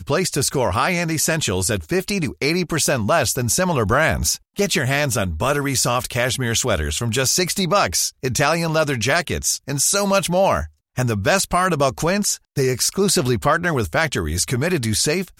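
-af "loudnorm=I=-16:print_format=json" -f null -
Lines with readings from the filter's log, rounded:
"input_i" : "-19.2",
"input_tp" : "-4.2",
"input_lra" : "0.5",
"input_thresh" : "-29.2",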